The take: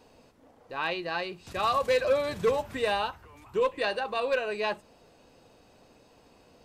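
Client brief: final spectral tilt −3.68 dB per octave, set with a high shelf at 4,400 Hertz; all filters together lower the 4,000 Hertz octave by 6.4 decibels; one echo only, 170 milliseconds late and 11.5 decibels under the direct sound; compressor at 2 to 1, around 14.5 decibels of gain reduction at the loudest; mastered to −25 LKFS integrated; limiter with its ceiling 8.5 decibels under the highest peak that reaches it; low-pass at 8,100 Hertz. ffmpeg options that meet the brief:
ffmpeg -i in.wav -af "lowpass=8100,equalizer=frequency=4000:width_type=o:gain=-6,highshelf=frequency=4400:gain=-5,acompressor=threshold=-49dB:ratio=2,alimiter=level_in=14dB:limit=-24dB:level=0:latency=1,volume=-14dB,aecho=1:1:170:0.266,volume=21.5dB" out.wav

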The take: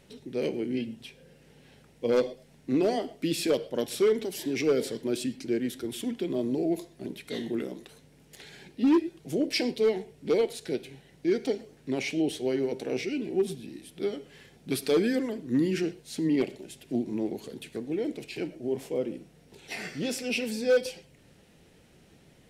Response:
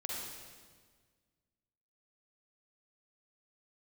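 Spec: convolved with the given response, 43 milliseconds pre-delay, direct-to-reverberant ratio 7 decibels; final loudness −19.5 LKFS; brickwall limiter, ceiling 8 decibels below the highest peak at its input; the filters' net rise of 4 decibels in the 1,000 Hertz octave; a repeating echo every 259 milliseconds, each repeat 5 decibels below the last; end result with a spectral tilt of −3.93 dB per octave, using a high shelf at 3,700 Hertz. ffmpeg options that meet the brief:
-filter_complex "[0:a]equalizer=frequency=1000:width_type=o:gain=5,highshelf=frequency=3700:gain=8,alimiter=limit=-20.5dB:level=0:latency=1,aecho=1:1:259|518|777|1036|1295|1554|1813:0.562|0.315|0.176|0.0988|0.0553|0.031|0.0173,asplit=2[link_01][link_02];[1:a]atrim=start_sample=2205,adelay=43[link_03];[link_02][link_03]afir=irnorm=-1:irlink=0,volume=-8.5dB[link_04];[link_01][link_04]amix=inputs=2:normalize=0,volume=9.5dB"

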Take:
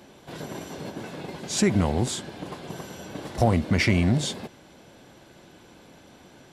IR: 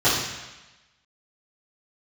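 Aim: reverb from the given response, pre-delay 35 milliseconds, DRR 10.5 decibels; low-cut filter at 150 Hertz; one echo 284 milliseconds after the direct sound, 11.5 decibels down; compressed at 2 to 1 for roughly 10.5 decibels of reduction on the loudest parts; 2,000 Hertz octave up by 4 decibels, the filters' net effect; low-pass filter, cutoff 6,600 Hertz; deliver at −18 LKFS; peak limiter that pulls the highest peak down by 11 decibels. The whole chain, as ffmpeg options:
-filter_complex "[0:a]highpass=150,lowpass=6600,equalizer=frequency=2000:width_type=o:gain=4.5,acompressor=threshold=-36dB:ratio=2,alimiter=level_in=4.5dB:limit=-24dB:level=0:latency=1,volume=-4.5dB,aecho=1:1:284:0.266,asplit=2[link_01][link_02];[1:a]atrim=start_sample=2205,adelay=35[link_03];[link_02][link_03]afir=irnorm=-1:irlink=0,volume=-30dB[link_04];[link_01][link_04]amix=inputs=2:normalize=0,volume=20.5dB"

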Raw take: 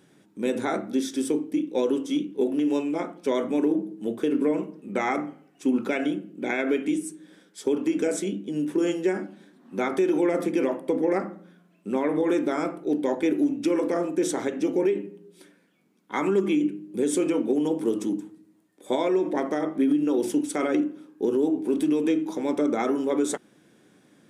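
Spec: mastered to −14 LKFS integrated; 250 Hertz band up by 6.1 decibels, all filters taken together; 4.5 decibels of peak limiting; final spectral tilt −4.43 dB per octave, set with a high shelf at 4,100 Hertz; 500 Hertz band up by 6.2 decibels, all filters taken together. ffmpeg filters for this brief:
ffmpeg -i in.wav -af "equalizer=frequency=250:width_type=o:gain=5.5,equalizer=frequency=500:width_type=o:gain=6,highshelf=frequency=4100:gain=-3.5,volume=7.5dB,alimiter=limit=-3.5dB:level=0:latency=1" out.wav

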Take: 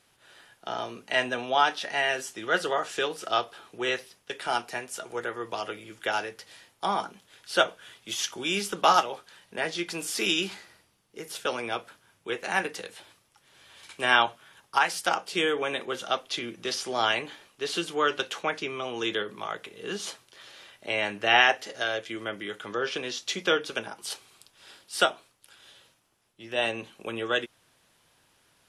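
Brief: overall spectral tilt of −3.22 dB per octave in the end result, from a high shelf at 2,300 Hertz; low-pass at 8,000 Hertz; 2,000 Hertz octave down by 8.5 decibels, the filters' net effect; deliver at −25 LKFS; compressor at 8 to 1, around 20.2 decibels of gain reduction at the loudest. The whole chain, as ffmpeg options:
ffmpeg -i in.wav -af "lowpass=8000,equalizer=frequency=2000:width_type=o:gain=-9,highshelf=frequency=2300:gain=-5.5,acompressor=threshold=-41dB:ratio=8,volume=21dB" out.wav

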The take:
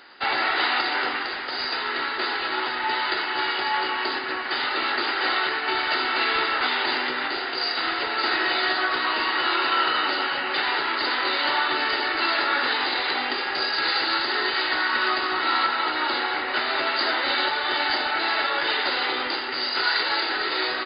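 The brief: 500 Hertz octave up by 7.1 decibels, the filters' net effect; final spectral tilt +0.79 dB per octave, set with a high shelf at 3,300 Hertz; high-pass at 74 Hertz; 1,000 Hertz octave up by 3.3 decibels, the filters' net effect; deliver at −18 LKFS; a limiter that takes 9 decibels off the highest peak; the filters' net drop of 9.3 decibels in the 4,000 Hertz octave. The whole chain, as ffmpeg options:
ffmpeg -i in.wav -af "highpass=74,equalizer=frequency=500:width_type=o:gain=9,equalizer=frequency=1000:width_type=o:gain=3,highshelf=frequency=3300:gain=-4.5,equalizer=frequency=4000:width_type=o:gain=-9,volume=8.5dB,alimiter=limit=-9.5dB:level=0:latency=1" out.wav

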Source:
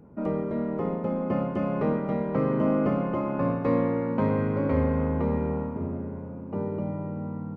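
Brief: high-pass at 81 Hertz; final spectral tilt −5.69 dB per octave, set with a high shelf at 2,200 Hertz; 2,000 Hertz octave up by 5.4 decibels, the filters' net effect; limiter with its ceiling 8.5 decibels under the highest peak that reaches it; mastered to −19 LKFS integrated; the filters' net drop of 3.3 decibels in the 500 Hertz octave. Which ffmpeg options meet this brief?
ffmpeg -i in.wav -af "highpass=81,equalizer=frequency=500:width_type=o:gain=-4,equalizer=frequency=2000:width_type=o:gain=9,highshelf=frequency=2200:gain=-4,volume=12dB,alimiter=limit=-9.5dB:level=0:latency=1" out.wav

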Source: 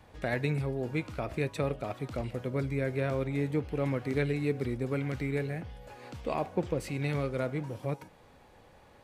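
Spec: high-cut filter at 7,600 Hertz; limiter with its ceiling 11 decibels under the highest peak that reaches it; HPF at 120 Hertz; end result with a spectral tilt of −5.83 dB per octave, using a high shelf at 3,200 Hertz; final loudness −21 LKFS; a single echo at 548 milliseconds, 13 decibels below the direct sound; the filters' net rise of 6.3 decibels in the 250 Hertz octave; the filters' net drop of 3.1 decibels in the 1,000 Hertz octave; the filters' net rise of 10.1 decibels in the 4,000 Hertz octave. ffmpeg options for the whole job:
ffmpeg -i in.wav -af "highpass=120,lowpass=7600,equalizer=frequency=250:width_type=o:gain=8.5,equalizer=frequency=1000:width_type=o:gain=-6.5,highshelf=frequency=3200:gain=7,equalizer=frequency=4000:width_type=o:gain=7.5,alimiter=level_in=1dB:limit=-24dB:level=0:latency=1,volume=-1dB,aecho=1:1:548:0.224,volume=14dB" out.wav

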